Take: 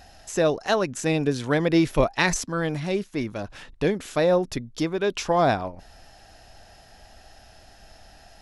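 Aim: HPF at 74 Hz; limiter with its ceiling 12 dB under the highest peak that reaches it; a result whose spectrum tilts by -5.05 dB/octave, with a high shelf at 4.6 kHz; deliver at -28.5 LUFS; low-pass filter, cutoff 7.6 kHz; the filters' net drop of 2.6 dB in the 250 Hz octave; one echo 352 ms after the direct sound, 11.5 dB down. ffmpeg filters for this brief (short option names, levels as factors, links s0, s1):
-af "highpass=74,lowpass=7600,equalizer=f=250:t=o:g=-4,highshelf=f=4600:g=-3.5,alimiter=limit=0.119:level=0:latency=1,aecho=1:1:352:0.266,volume=1.12"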